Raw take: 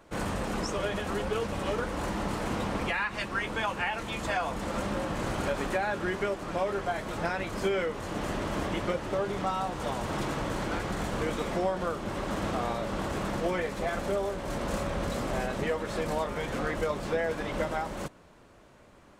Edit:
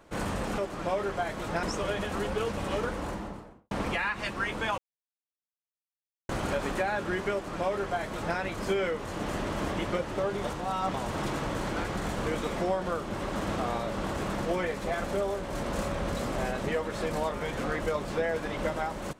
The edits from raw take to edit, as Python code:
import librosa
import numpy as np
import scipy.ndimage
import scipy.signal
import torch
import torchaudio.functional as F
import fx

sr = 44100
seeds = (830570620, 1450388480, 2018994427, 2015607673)

y = fx.studio_fade_out(x, sr, start_s=1.77, length_s=0.89)
y = fx.edit(y, sr, fx.silence(start_s=3.73, length_s=1.51),
    fx.duplicate(start_s=6.27, length_s=1.05, to_s=0.58),
    fx.reverse_span(start_s=9.39, length_s=0.5), tone=tone)